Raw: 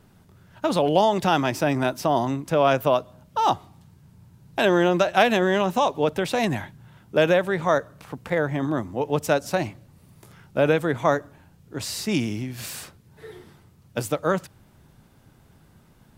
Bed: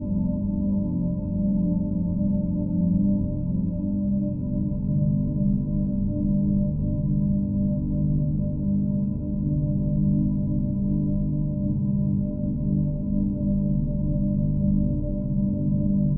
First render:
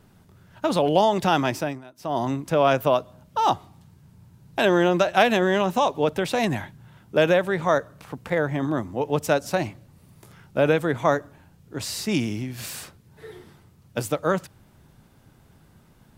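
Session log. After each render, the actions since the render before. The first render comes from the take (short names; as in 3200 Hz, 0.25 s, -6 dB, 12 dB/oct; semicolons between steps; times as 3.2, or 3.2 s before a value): 1.51–2.27 dip -22 dB, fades 0.31 s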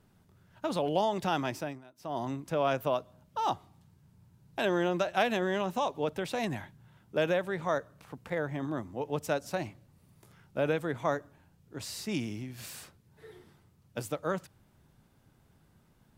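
gain -9.5 dB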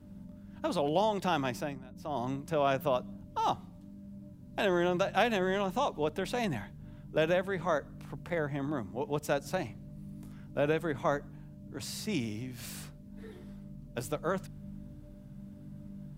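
add bed -24 dB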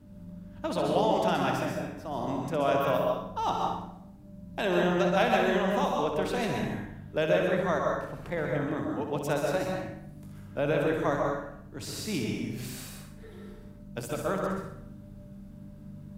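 flutter echo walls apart 10.7 m, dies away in 0.51 s; plate-style reverb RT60 0.7 s, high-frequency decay 0.6×, pre-delay 0.115 s, DRR 0.5 dB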